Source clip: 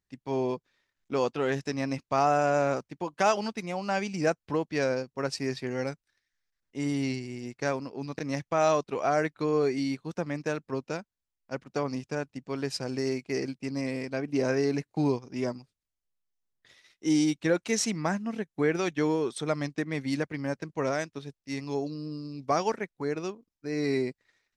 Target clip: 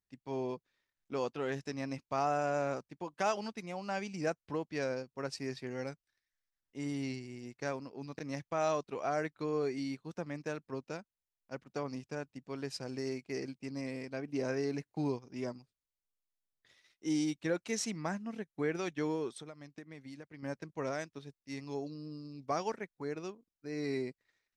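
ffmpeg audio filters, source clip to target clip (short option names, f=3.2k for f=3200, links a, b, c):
-filter_complex "[0:a]asettb=1/sr,asplit=3[a][b][c];[a]atrim=end=19.294[d];[b]atrim=start=19.29:end=20.43,asetpts=PTS-STARTPTS,afade=t=in:d=0.004:c=qsin,afade=t=out:st=1.136:d=0.004:c=qsin,acompressor=threshold=-37dB:ratio=16[e];[c]atrim=start=20.426[f];[d][e]acrossfade=d=0.004:c1=hsin:c2=qsin[g];[g][f]acrossfade=d=0.004:c1=qsin:c2=hsin,volume=-8dB"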